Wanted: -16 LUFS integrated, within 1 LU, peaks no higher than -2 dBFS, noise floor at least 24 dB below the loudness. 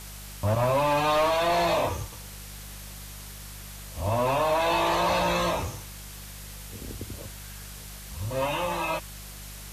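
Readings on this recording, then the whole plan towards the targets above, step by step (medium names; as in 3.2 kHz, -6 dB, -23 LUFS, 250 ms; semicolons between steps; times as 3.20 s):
hum 50 Hz; highest harmonic 200 Hz; hum level -41 dBFS; noise floor -42 dBFS; noise floor target -50 dBFS; loudness -26.0 LUFS; peak level -17.0 dBFS; loudness target -16.0 LUFS
-> de-hum 50 Hz, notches 4; noise print and reduce 8 dB; trim +10 dB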